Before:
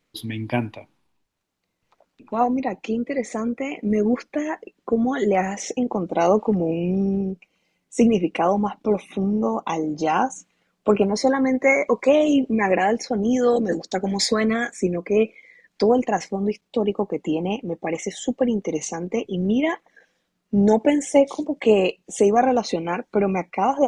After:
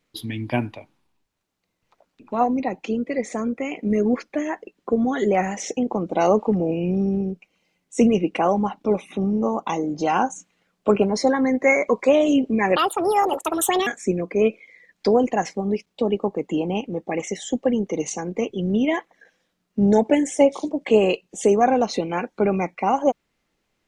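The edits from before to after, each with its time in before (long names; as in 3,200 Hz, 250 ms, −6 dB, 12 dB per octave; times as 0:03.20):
0:12.76–0:14.62: play speed 168%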